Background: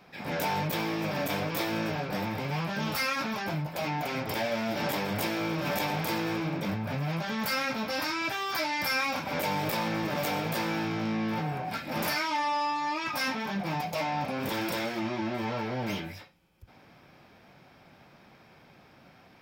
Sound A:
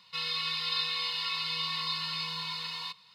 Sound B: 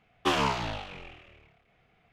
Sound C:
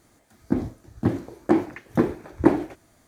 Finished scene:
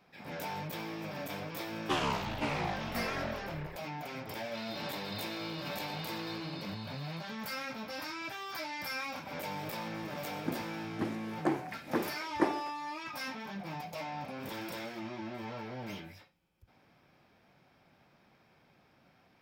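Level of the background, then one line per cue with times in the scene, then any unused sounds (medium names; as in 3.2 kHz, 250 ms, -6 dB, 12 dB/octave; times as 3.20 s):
background -9.5 dB
1.64 s: add B -6 dB + ever faster or slower copies 451 ms, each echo -4 st, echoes 2
4.40 s: add A -14 dB
9.96 s: add C -4.5 dB + high-pass 740 Hz 6 dB/octave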